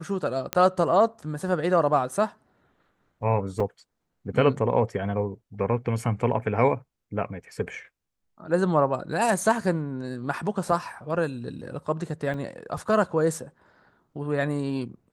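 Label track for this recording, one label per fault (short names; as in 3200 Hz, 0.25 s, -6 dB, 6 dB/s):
0.530000	0.530000	pop -8 dBFS
3.600000	3.600000	gap 3.5 ms
12.340000	12.340000	gap 3.2 ms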